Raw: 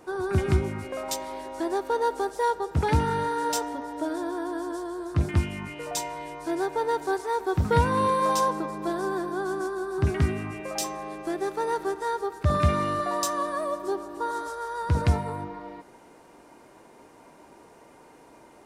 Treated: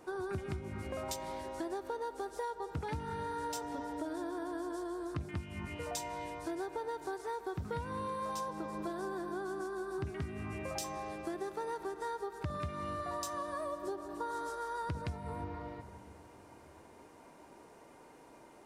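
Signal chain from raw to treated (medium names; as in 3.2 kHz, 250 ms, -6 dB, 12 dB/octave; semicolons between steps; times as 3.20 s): reverberation RT60 2.4 s, pre-delay 149 ms, DRR 16.5 dB; compression 12:1, threshold -30 dBFS, peak gain reduction 15.5 dB; trim -5 dB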